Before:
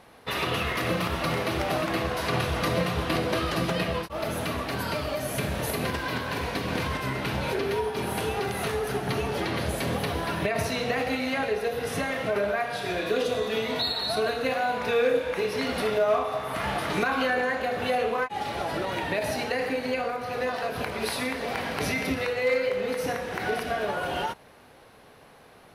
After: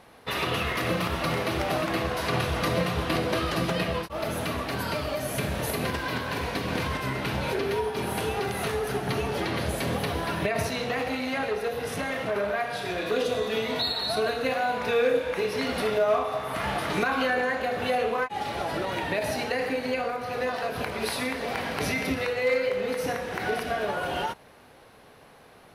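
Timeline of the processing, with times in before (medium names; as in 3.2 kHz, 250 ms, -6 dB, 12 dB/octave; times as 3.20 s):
10.69–13.12 s: transformer saturation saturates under 1 kHz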